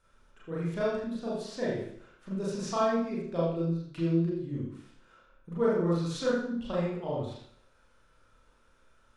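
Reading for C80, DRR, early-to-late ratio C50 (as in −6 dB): 3.5 dB, −7.5 dB, 1.0 dB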